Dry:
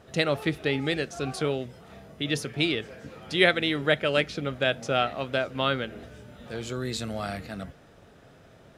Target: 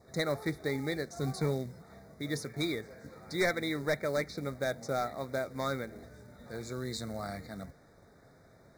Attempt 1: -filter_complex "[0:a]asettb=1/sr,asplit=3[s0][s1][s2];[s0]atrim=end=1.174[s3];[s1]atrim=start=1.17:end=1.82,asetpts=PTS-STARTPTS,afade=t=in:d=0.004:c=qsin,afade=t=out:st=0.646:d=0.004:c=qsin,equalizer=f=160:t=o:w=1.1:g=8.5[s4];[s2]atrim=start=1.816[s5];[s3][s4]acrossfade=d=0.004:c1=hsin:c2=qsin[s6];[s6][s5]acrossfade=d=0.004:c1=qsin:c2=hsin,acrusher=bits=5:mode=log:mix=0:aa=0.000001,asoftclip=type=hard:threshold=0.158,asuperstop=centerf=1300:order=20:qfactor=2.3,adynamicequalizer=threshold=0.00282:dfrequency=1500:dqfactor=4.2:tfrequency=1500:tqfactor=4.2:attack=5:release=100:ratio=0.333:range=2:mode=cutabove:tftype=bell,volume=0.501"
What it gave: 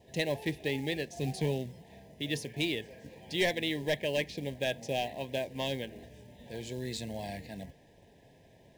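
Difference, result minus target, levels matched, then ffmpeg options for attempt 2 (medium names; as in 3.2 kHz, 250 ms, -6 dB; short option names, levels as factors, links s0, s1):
4 kHz band +4.5 dB
-filter_complex "[0:a]asettb=1/sr,asplit=3[s0][s1][s2];[s0]atrim=end=1.174[s3];[s1]atrim=start=1.17:end=1.82,asetpts=PTS-STARTPTS,afade=t=in:d=0.004:c=qsin,afade=t=out:st=0.646:d=0.004:c=qsin,equalizer=f=160:t=o:w=1.1:g=8.5[s4];[s2]atrim=start=1.816[s5];[s3][s4]acrossfade=d=0.004:c1=hsin:c2=qsin[s6];[s6][s5]acrossfade=d=0.004:c1=qsin:c2=hsin,acrusher=bits=5:mode=log:mix=0:aa=0.000001,asoftclip=type=hard:threshold=0.158,asuperstop=centerf=2900:order=20:qfactor=2.3,adynamicequalizer=threshold=0.00282:dfrequency=1500:dqfactor=4.2:tfrequency=1500:tqfactor=4.2:attack=5:release=100:ratio=0.333:range=2:mode=cutabove:tftype=bell,volume=0.501"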